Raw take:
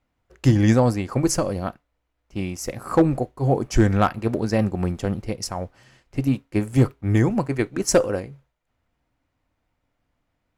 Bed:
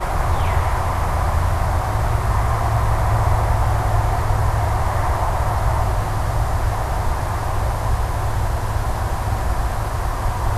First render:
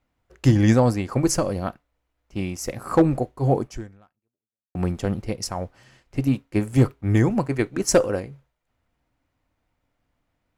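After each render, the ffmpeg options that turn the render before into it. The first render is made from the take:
-filter_complex "[0:a]asplit=2[a][b];[a]atrim=end=4.75,asetpts=PTS-STARTPTS,afade=t=out:st=3.6:d=1.15:c=exp[c];[b]atrim=start=4.75,asetpts=PTS-STARTPTS,afade=t=in:d=0.004:c=hsin[d];[c][d]concat=n=2:v=0:a=1"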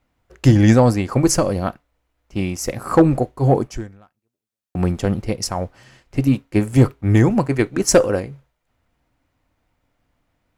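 -af "acontrast=33"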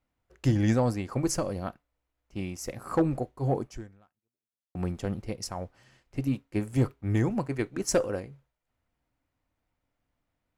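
-af "volume=-12dB"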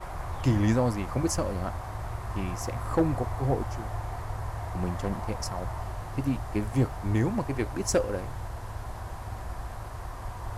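-filter_complex "[1:a]volume=-16dB[a];[0:a][a]amix=inputs=2:normalize=0"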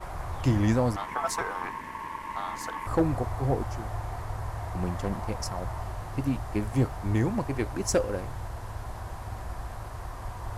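-filter_complex "[0:a]asettb=1/sr,asplit=3[a][b][c];[a]atrim=end=0.964[d];[b]atrim=start=0.96:end=2.87,asetpts=PTS-STARTPTS,afade=t=in:d=0.004:c=qsin,afade=t=out:st=1.906:d=0.004:c=qsin,aeval=exprs='val(0)*sin(2*PI*1000*n/s)':c=same[e];[c]atrim=start=2.866[f];[d][e]acrossfade=d=0.004:c1=hsin:c2=qsin[g];[g][f]acrossfade=d=0.004:c1=qsin:c2=hsin"

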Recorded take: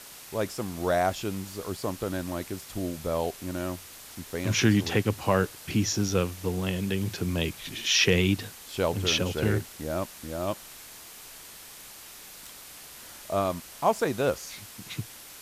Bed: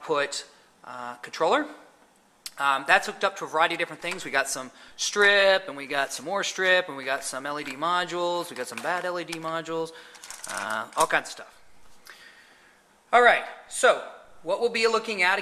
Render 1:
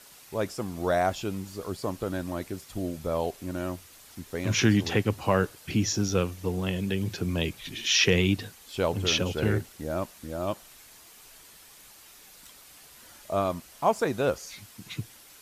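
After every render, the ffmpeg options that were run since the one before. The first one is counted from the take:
-af "afftdn=nr=7:nf=-46"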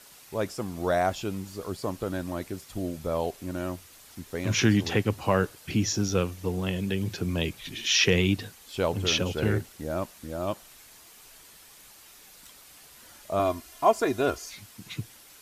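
-filter_complex "[0:a]asettb=1/sr,asplit=3[a][b][c];[a]atrim=end=13.394[d];[b]atrim=start=13.39:end=14.5,asetpts=PTS-STARTPTS,afade=t=in:d=0.004:c=qsin,afade=t=out:st=1.106:d=0.004:c=qsin,aecho=1:1:2.9:0.73,atrim=end_sample=48951[e];[c]atrim=start=14.496[f];[d][e]acrossfade=d=0.004:c1=hsin:c2=qsin[g];[g][f]acrossfade=d=0.004:c1=qsin:c2=hsin"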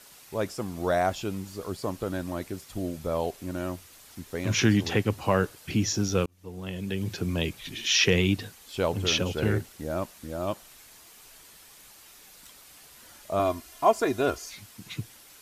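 -filter_complex "[0:a]asplit=2[a][b];[a]atrim=end=6.26,asetpts=PTS-STARTPTS,afade=t=out:st=6.256:d=0.004:c=hsin[c];[b]atrim=start=6.26,asetpts=PTS-STARTPTS,afade=t=in:d=0.88[d];[c][d]concat=n=2:v=0:a=1"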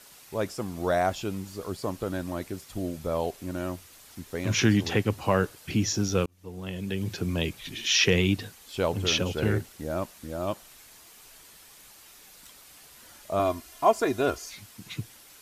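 -af anull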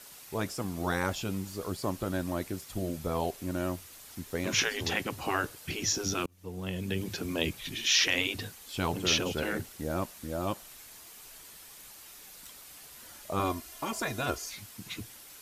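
-af "afftfilt=real='re*lt(hypot(re,im),0.251)':imag='im*lt(hypot(re,im),0.251)':win_size=1024:overlap=0.75,highshelf=f=10k:g=4.5"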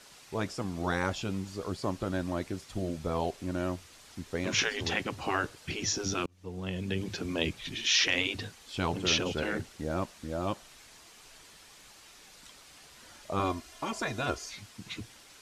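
-af "lowpass=6.7k"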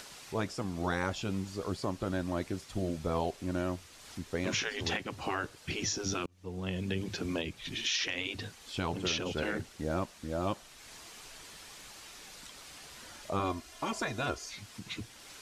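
-af "acompressor=mode=upward:threshold=-43dB:ratio=2.5,alimiter=limit=-21dB:level=0:latency=1:release=336"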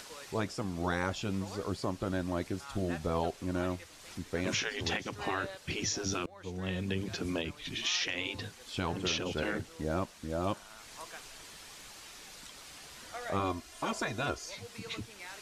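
-filter_complex "[1:a]volume=-25.5dB[a];[0:a][a]amix=inputs=2:normalize=0"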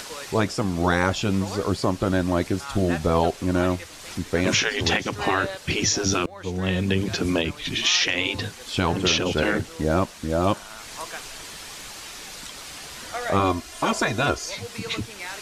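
-af "volume=11.5dB"

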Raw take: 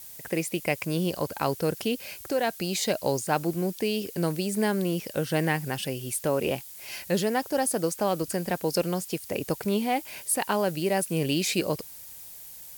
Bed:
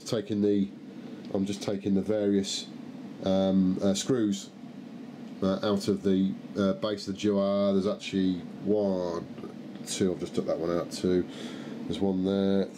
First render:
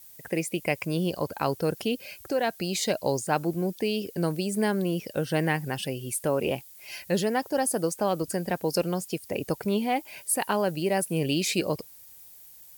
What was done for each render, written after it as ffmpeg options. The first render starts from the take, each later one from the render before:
-af "afftdn=nr=8:nf=-44"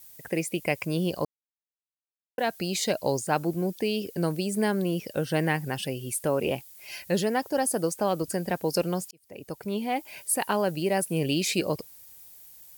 -filter_complex "[0:a]asplit=4[a][b][c][d];[a]atrim=end=1.25,asetpts=PTS-STARTPTS,afade=t=out:st=1.246:d=0.004:c=hsin[e];[b]atrim=start=1.25:end=2.38,asetpts=PTS-STARTPTS,volume=0[f];[c]atrim=start=2.38:end=9.11,asetpts=PTS-STARTPTS,afade=t=in:d=0.004:c=hsin,afade=t=out:st=6.726:d=0.004:c=hsin[g];[d]atrim=start=9.11,asetpts=PTS-STARTPTS,afade=t=in:d=1.03[h];[e][f][g][h]concat=n=4:v=0:a=1"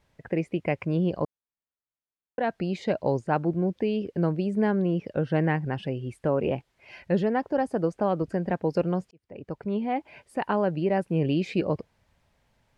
-af "lowpass=1.9k,lowshelf=f=230:g=5"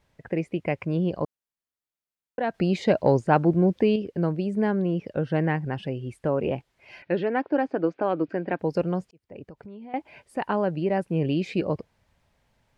-filter_complex "[0:a]asettb=1/sr,asplit=3[a][b][c];[a]atrim=end=2.544[d];[b]atrim=start=2.54:end=3.96,asetpts=PTS-STARTPTS,afade=t=in:d=0.004:c=qsin,afade=t=out:st=1.416:d=0.004:c=qsin,acontrast=43[e];[c]atrim=start=3.956[f];[d][e]acrossfade=d=0.004:c1=hsin:c2=qsin[g];[g][f]acrossfade=d=0.004:c1=qsin:c2=hsin,asettb=1/sr,asplit=3[h][i][j];[h]atrim=end=7.024[k];[i]atrim=start=7.02:end=8.59,asetpts=PTS-STARTPTS,afade=t=in:d=0.004:c=qsin,afade=t=out:st=1.566:d=0.004:c=qsin,highpass=190,equalizer=f=210:t=q:w=4:g=-6,equalizer=f=300:t=q:w=4:g=8,equalizer=f=1.5k:t=q:w=4:g=5,equalizer=f=2.4k:t=q:w=4:g=7,lowpass=f=4.3k:w=0.5412,lowpass=f=4.3k:w=1.3066[l];[j]atrim=start=8.586[m];[k][l]acrossfade=d=0.004:c1=hsin:c2=qsin[n];[n][m]acrossfade=d=0.004:c1=qsin:c2=hsin,asettb=1/sr,asplit=3[o][p][q];[o]atrim=end=9.474[r];[p]atrim=start=9.47:end=9.94,asetpts=PTS-STARTPTS,afade=t=in:d=0.004:c=qsin,afade=t=out:st=0.466:d=0.004:c=qsin,acompressor=threshold=-41dB:ratio=4:attack=3.2:release=140:knee=1:detection=peak[s];[q]atrim=start=9.936[t];[r][s]acrossfade=d=0.004:c1=hsin:c2=qsin[u];[u][t]acrossfade=d=0.004:c1=qsin:c2=hsin"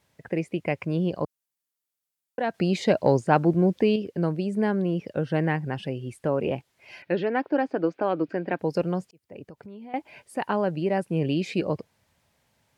-af "highpass=84,aemphasis=mode=production:type=cd"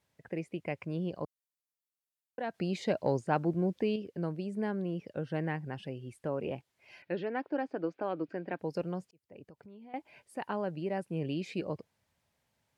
-af "volume=-9.5dB"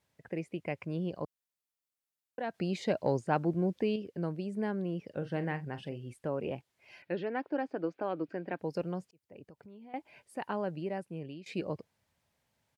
-filter_complex "[0:a]asplit=3[a][b][c];[a]afade=t=out:st=5.1:d=0.02[d];[b]asplit=2[e][f];[f]adelay=41,volume=-12dB[g];[e][g]amix=inputs=2:normalize=0,afade=t=in:st=5.1:d=0.02,afade=t=out:st=6.12:d=0.02[h];[c]afade=t=in:st=6.12:d=0.02[i];[d][h][i]amix=inputs=3:normalize=0,asplit=2[j][k];[j]atrim=end=11.46,asetpts=PTS-STARTPTS,afade=t=out:st=10.73:d=0.73:silence=0.16788[l];[k]atrim=start=11.46,asetpts=PTS-STARTPTS,afade=t=in:d=0.004:c=hsin:silence=0.16788[m];[l][m]concat=n=2:v=0:a=1"

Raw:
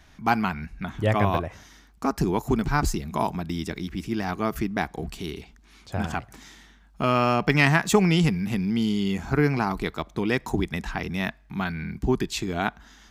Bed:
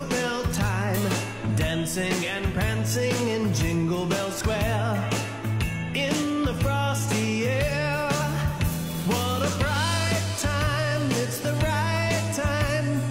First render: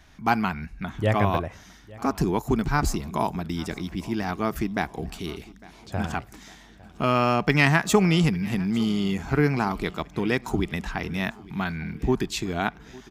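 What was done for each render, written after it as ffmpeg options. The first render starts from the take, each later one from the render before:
-af "aecho=1:1:854|1708|2562|3416:0.0794|0.0461|0.0267|0.0155"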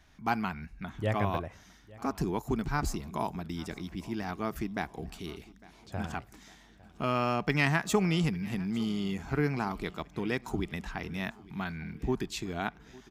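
-af "volume=-7.5dB"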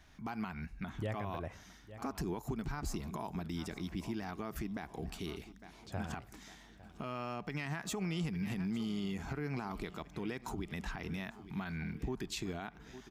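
-af "acompressor=threshold=-30dB:ratio=6,alimiter=level_in=5dB:limit=-24dB:level=0:latency=1:release=78,volume=-5dB"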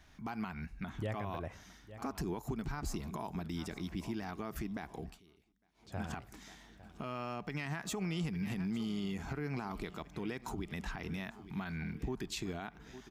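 -filter_complex "[0:a]asplit=3[a][b][c];[a]atrim=end=5.21,asetpts=PTS-STARTPTS,afade=t=out:st=4.95:d=0.26:silence=0.0707946[d];[b]atrim=start=5.21:end=5.74,asetpts=PTS-STARTPTS,volume=-23dB[e];[c]atrim=start=5.74,asetpts=PTS-STARTPTS,afade=t=in:d=0.26:silence=0.0707946[f];[d][e][f]concat=n=3:v=0:a=1"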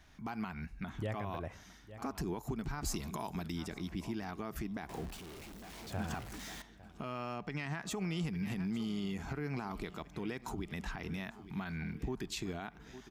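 -filter_complex "[0:a]asettb=1/sr,asplit=3[a][b][c];[a]atrim=end=2.814[d];[b]atrim=start=2.81:end=3.52,asetpts=PTS-STARTPTS,afade=t=in:d=0.004:c=qsin,afade=t=out:st=0.706:d=0.004:c=qsin,highshelf=f=2.2k:g=7.5[e];[c]atrim=start=3.516[f];[d][e]acrossfade=d=0.004:c1=hsin:c2=qsin[g];[g][f]acrossfade=d=0.004:c1=qsin:c2=hsin,asettb=1/sr,asplit=3[h][i][j];[h]atrim=end=4.894[k];[i]atrim=start=4.89:end=6.62,asetpts=PTS-STARTPTS,afade=t=in:d=0.004:c=qsin,afade=t=out:st=1.726:d=0.004:c=qsin,aeval=exprs='val(0)+0.5*0.00668*sgn(val(0))':c=same[l];[j]atrim=start=6.616[m];[k][l]acrossfade=d=0.004:c1=hsin:c2=qsin[n];[n][m]acrossfade=d=0.004:c1=qsin:c2=hsin,asettb=1/sr,asplit=3[o][p][q];[o]atrim=end=7.384[r];[p]atrim=start=7.38:end=7.91,asetpts=PTS-STARTPTS,afade=t=in:d=0.004:c=qsin,afade=t=out:st=0.526:d=0.004:c=qsin,equalizer=f=14k:t=o:w=0.85:g=-8.5[s];[q]atrim=start=7.906[t];[r][s]acrossfade=d=0.004:c1=hsin:c2=qsin[u];[u][t]acrossfade=d=0.004:c1=qsin:c2=hsin"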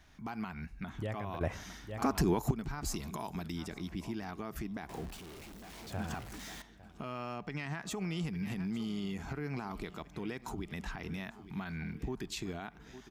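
-filter_complex "[0:a]asplit=3[a][b][c];[a]atrim=end=1.412[d];[b]atrim=start=1.408:end=2.512,asetpts=PTS-STARTPTS,volume=9dB[e];[c]atrim=start=2.508[f];[d][e]acrossfade=d=0.004:c1=hsin:c2=hsin[g];[g][f]acrossfade=d=0.004:c1=hsin:c2=hsin"

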